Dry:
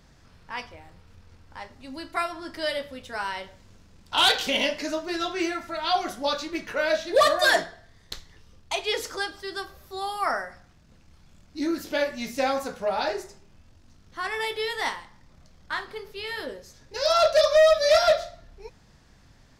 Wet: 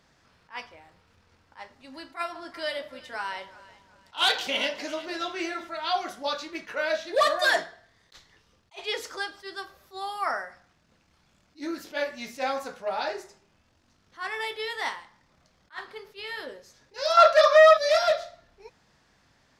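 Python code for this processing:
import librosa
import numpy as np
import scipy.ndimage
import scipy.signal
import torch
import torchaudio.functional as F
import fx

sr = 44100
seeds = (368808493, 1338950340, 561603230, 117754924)

y = fx.echo_alternate(x, sr, ms=184, hz=890.0, feedback_pct=60, wet_db=-13.5, at=(1.89, 5.67), fade=0.02)
y = fx.peak_eq(y, sr, hz=1300.0, db=12.0, octaves=1.8, at=(17.17, 17.77))
y = fx.highpass(y, sr, hz=1300.0, slope=6)
y = fx.tilt_eq(y, sr, slope=-2.5)
y = fx.attack_slew(y, sr, db_per_s=320.0)
y = y * 10.0 ** (2.0 / 20.0)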